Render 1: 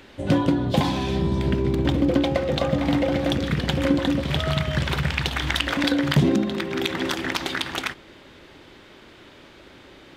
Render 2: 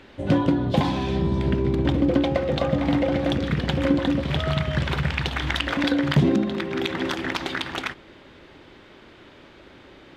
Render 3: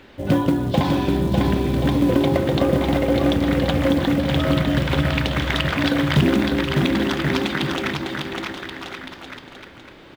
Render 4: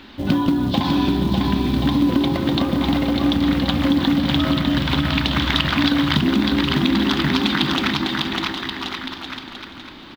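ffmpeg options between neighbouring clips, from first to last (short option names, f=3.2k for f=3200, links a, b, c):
-af "lowpass=f=3.5k:p=1"
-filter_complex "[0:a]acrusher=bits=7:mode=log:mix=0:aa=0.000001,asplit=2[a][b];[b]aecho=0:1:600|1080|1464|1771|2017:0.631|0.398|0.251|0.158|0.1[c];[a][c]amix=inputs=2:normalize=0,volume=1.5dB"
-af "acompressor=threshold=-19dB:ratio=6,equalizer=f=125:t=o:w=1:g=-5,equalizer=f=250:t=o:w=1:g=7,equalizer=f=500:t=o:w=1:g=-11,equalizer=f=1k:t=o:w=1:g=4,equalizer=f=2k:t=o:w=1:g=-3,equalizer=f=4k:t=o:w=1:g=8,equalizer=f=8k:t=o:w=1:g=-6,aecho=1:1:479:0.2,volume=4dB"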